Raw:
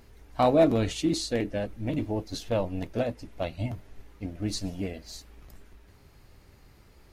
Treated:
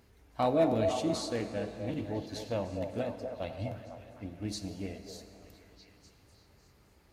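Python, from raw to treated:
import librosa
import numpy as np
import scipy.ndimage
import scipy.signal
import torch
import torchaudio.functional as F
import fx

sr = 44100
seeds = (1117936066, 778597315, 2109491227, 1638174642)

y = scipy.signal.sosfilt(scipy.signal.butter(2, 57.0, 'highpass', fs=sr, output='sos'), x)
y = fx.echo_stepped(y, sr, ms=251, hz=550.0, octaves=0.7, feedback_pct=70, wet_db=-4)
y = fx.rev_plate(y, sr, seeds[0], rt60_s=3.5, hf_ratio=0.65, predelay_ms=0, drr_db=9.5)
y = y * 10.0 ** (-6.5 / 20.0)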